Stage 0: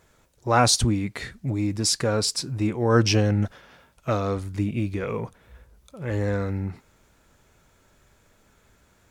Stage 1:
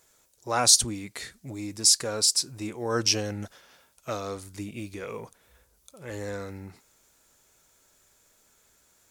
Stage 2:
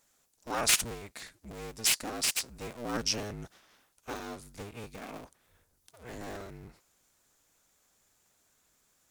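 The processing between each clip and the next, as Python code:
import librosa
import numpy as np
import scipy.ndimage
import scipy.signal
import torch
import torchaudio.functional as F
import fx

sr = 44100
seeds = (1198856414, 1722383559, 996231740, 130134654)

y1 = fx.bass_treble(x, sr, bass_db=-8, treble_db=13)
y1 = F.gain(torch.from_numpy(y1), -6.5).numpy()
y2 = fx.cycle_switch(y1, sr, every=2, mode='inverted')
y2 = F.gain(torch.from_numpy(y2), -7.0).numpy()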